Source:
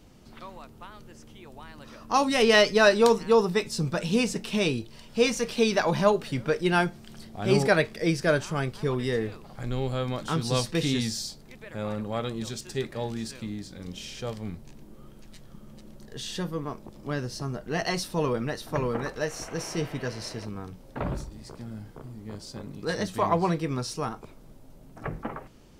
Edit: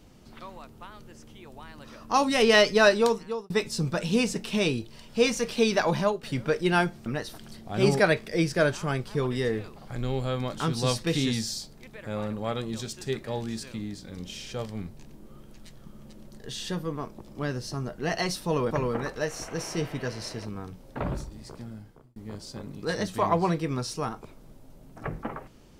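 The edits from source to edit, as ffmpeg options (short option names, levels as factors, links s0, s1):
-filter_complex "[0:a]asplit=7[s0][s1][s2][s3][s4][s5][s6];[s0]atrim=end=3.5,asetpts=PTS-STARTPTS,afade=t=out:st=2.86:d=0.64[s7];[s1]atrim=start=3.5:end=6.23,asetpts=PTS-STARTPTS,afade=t=in:d=0.004:c=hsin,afade=t=out:st=2.43:d=0.3:silence=0.237137[s8];[s2]atrim=start=6.23:end=7.062,asetpts=PTS-STARTPTS,afade=t=in:d=0.004:c=hsin:silence=0.237137[s9];[s3]atrim=start=18.388:end=18.712[s10];[s4]atrim=start=7.058:end=18.392[s11];[s5]atrim=start=18.708:end=22.16,asetpts=PTS-STARTPTS,afade=t=out:st=2.882:d=0.57[s12];[s6]atrim=start=22.16,asetpts=PTS-STARTPTS,afade=t=in:d=0.004:c=hsin[s13];[s7][s8][s9]concat=n=3:v=0:a=1[s14];[s14][s10]acrossfade=d=0.004:c1=hsin:c2=hsin[s15];[s15][s11]acrossfade=d=0.004:c1=hsin:c2=hsin[s16];[s12][s13]concat=n=2:v=0:a=1[s17];[s16][s17]acrossfade=d=0.004:c1=hsin:c2=hsin"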